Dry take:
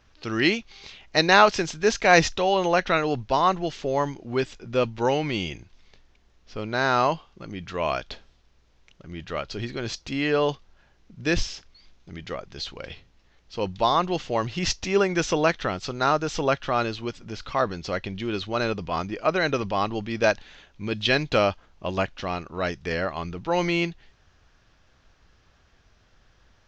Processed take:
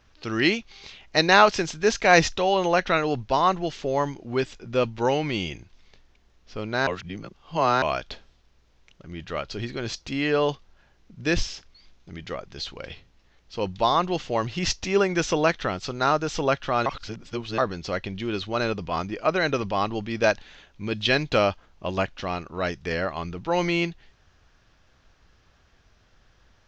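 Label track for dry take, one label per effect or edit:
6.870000	7.820000	reverse
16.860000	17.580000	reverse

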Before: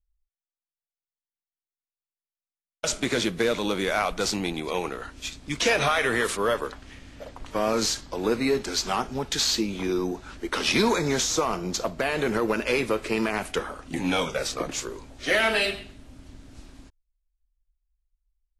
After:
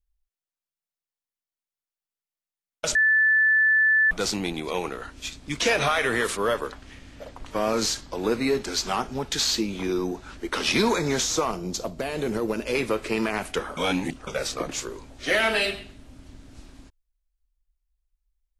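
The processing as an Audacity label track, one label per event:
2.950000	4.110000	beep over 1,750 Hz −16 dBFS
11.510000	12.750000	parametric band 1,600 Hz −8.5 dB 2.1 octaves
13.770000	14.270000	reverse

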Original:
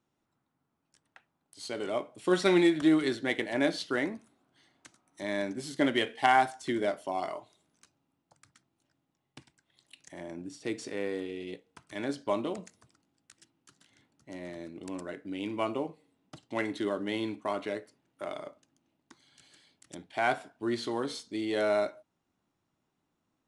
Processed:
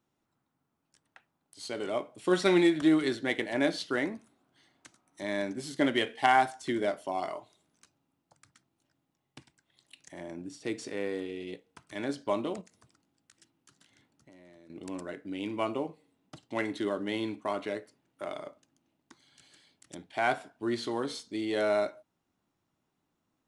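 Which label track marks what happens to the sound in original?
12.610000	14.700000	downward compressor, threshold −53 dBFS

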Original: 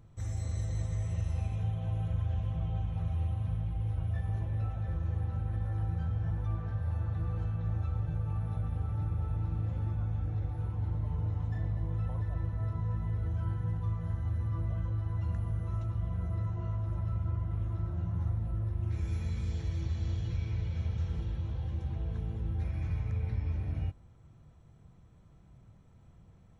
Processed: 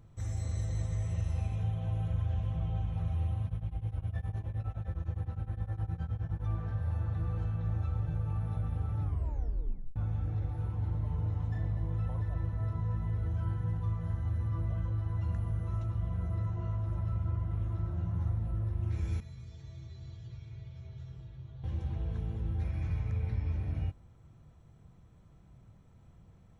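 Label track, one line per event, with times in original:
3.450000	6.430000	tremolo along a rectified sine nulls at 9.7 Hz
9.010000	9.010000	tape stop 0.95 s
19.200000	21.640000	tuned comb filter 130 Hz, decay 0.24 s, harmonics odd, mix 90%

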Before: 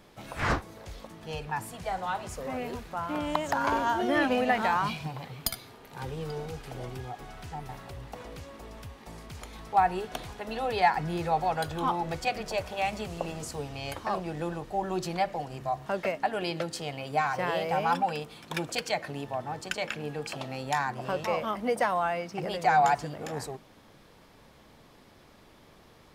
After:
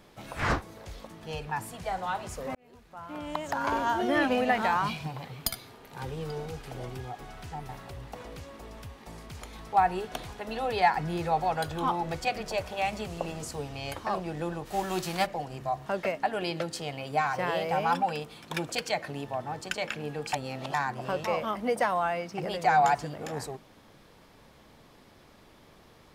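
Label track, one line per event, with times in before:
2.550000	3.940000	fade in
14.650000	15.250000	spectral envelope flattened exponent 0.6
20.330000	20.740000	reverse

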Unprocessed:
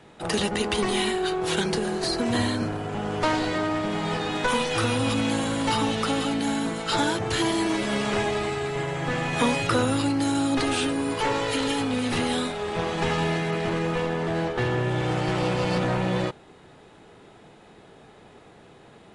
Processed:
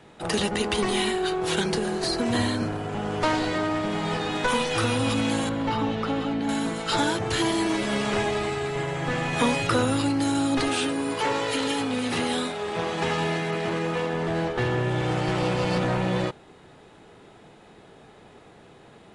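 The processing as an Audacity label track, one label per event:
5.490000	6.490000	head-to-tape spacing loss at 10 kHz 23 dB
10.680000	14.140000	high-pass filter 150 Hz 6 dB per octave

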